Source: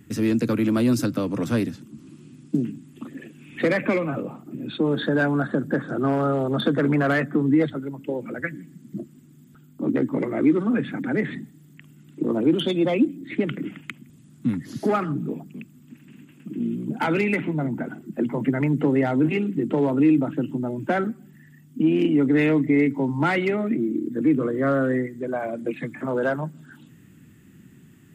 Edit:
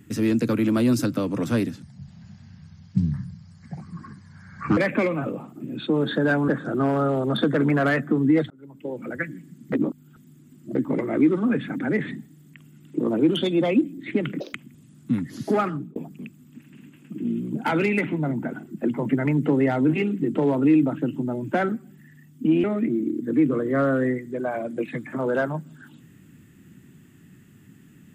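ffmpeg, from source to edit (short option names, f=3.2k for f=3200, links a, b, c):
-filter_complex "[0:a]asplit=11[a][b][c][d][e][f][g][h][i][j][k];[a]atrim=end=1.824[l];[b]atrim=start=1.82:end=3.68,asetpts=PTS-STARTPTS,asetrate=27783,aresample=44100[m];[c]atrim=start=3.676:end=5.392[n];[d]atrim=start=5.718:end=7.74,asetpts=PTS-STARTPTS,afade=t=out:st=2.018:d=0.004:c=hsin[o];[e]atrim=start=7.74:end=8.962,asetpts=PTS-STARTPTS,afade=t=in:d=0.61[p];[f]atrim=start=8.958:end=9.992,asetpts=PTS-STARTPTS,areverse[q];[g]atrim=start=9.988:end=13.644[r];[h]atrim=start=13.64:end=13.89,asetpts=PTS-STARTPTS,asetrate=82026,aresample=44100,atrim=end_sample=5927,asetpts=PTS-STARTPTS[s];[i]atrim=start=13.886:end=15.31,asetpts=PTS-STARTPTS,afade=t=out:st=1.134:d=0.29[t];[j]atrim=start=15.31:end=21.992,asetpts=PTS-STARTPTS,afade=t=in:d=0.004:c=hsin[u];[k]atrim=start=23.518[v];[l][m]acrossfade=d=0.004:c1=hsin:c2=hsin[w];[w][n]acrossfade=d=0.004:c1=hsin:c2=hsin[x];[o][p]concat=n=2:v=0:a=1[y];[x][y]acrossfade=d=0.004:c1=hsin:c2=hsin[z];[z][q]acrossfade=d=0.004:c1=hsin:c2=hsin[aa];[aa][r]acrossfade=d=0.004:c1=hsin:c2=hsin[ab];[ab][s]acrossfade=d=0.004:c1=hsin:c2=hsin[ac];[t][u]concat=n=2:v=0:a=1[ad];[ac][ad]acrossfade=d=0.004:c1=hsin:c2=hsin[ae];[ae][v]acrossfade=d=0.004:c1=hsin:c2=hsin"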